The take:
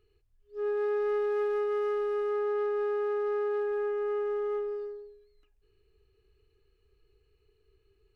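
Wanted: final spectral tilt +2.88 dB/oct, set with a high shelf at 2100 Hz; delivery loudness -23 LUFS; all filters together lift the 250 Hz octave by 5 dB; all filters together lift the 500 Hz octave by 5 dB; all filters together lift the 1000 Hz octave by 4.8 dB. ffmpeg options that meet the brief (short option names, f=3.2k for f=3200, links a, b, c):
-af "equalizer=f=250:t=o:g=6.5,equalizer=f=500:t=o:g=3,equalizer=f=1k:t=o:g=7.5,highshelf=f=2.1k:g=-7,volume=2.5dB"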